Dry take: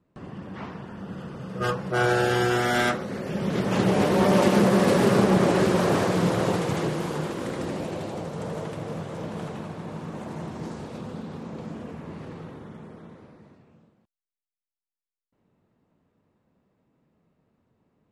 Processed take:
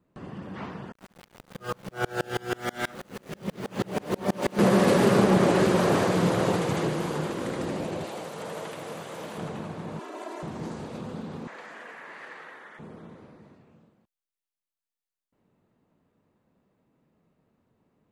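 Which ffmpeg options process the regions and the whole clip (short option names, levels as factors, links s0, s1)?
-filter_complex "[0:a]asettb=1/sr,asplit=3[s0][s1][s2];[s0]atrim=end=0.924[s3];[s1]atrim=start=0.92:end=4.59,asetpts=PTS-STARTPTS,afade=t=in:d=0.004:c=qsin,afade=t=out:st=3.666:d=0.004:c=qsin,aeval=exprs='val(0)*gte(abs(val(0)),0.0237)':c=same,aeval=exprs='val(0)*pow(10,-32*if(lt(mod(-6.2*n/s,1),2*abs(-6.2)/1000),1-mod(-6.2*n/s,1)/(2*abs(-6.2)/1000),(mod(-6.2*n/s,1)-2*abs(-6.2)/1000)/(1-2*abs(-6.2)/1000))/20)':c=same[s4];[s2]atrim=start=4.586[s5];[s3][s4]acrossfade=d=0.004:c1=hsin:c2=qsin[s6];[s6][s5]acrossfade=d=0.004:c1=qsin:c2=hsin,asettb=1/sr,asplit=3[s7][s8][s9];[s7]atrim=end=8.044[s10];[s8]atrim=start=8.04:end=9.38,asetpts=PTS-STARTPTS,afade=t=in:d=0.004:c=qsin,afade=t=out:st=1.336:d=0.004:c=qsin,highpass=43,aemphasis=mode=production:type=riaa,acrossover=split=3900[s11][s12];[s12]acompressor=threshold=0.00282:ratio=4:attack=1:release=60[s13];[s11][s13]amix=inputs=2:normalize=0[s14];[s9]atrim=start=9.376[s15];[s10][s14]acrossfade=d=0.004:c1=hsin:c2=qsin[s16];[s16][s15]acrossfade=d=0.004:c1=qsin:c2=hsin,asettb=1/sr,asplit=3[s17][s18][s19];[s17]atrim=end=9.994[s20];[s18]atrim=start=9.99:end=10.43,asetpts=PTS-STARTPTS,afade=t=in:d=0.004:c=qsin,afade=t=out:st=0.436:d=0.004:c=qsin,aeval=exprs='if(lt(val(0),0),0.708*val(0),val(0))':c=same,highpass=f=350:w=0.5412,highpass=f=350:w=1.3066,aecho=1:1:3:1,atrim=end_sample=19404[s21];[s19]atrim=start=10.426[s22];[s20][s21]acrossfade=d=0.004:c1=hsin:c2=qsin[s23];[s23][s22]acrossfade=d=0.004:c1=qsin:c2=hsin,asettb=1/sr,asplit=3[s24][s25][s26];[s24]atrim=end=11.474[s27];[s25]atrim=start=11.47:end=12.79,asetpts=PTS-STARTPTS,afade=t=in:d=0.004:c=qsin,afade=t=out:st=1.316:d=0.004:c=qsin,highpass=700,equalizer=f=1800:w=2.1:g=13.5[s28];[s26]atrim=start=12.786[s29];[s27][s28]acrossfade=d=0.004:c1=hsin:c2=qsin[s30];[s30][s29]acrossfade=d=0.004:c1=qsin:c2=hsin,equalizer=f=78:w=0.78:g=-2.5,bandreject=f=5400:w=22"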